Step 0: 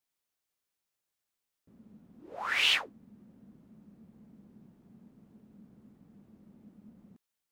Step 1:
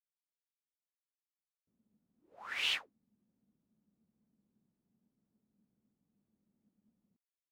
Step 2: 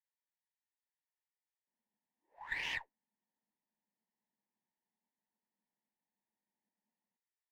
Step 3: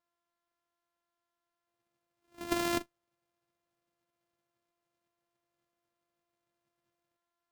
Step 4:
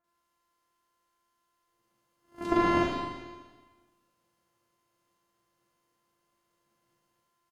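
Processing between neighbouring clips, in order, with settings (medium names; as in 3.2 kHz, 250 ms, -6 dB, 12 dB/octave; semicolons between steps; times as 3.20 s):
upward expansion 1.5:1, over -56 dBFS; trim -7 dB
two resonant band-passes 1.3 kHz, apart 0.99 oct; sliding maximum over 3 samples; trim +6.5 dB
sorted samples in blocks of 128 samples; trim +8 dB
low-pass that closes with the level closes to 2.2 kHz, closed at -36.5 dBFS; bands offset in time lows, highs 40 ms, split 2.2 kHz; Schroeder reverb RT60 1.4 s, combs from 33 ms, DRR -4 dB; trim +5.5 dB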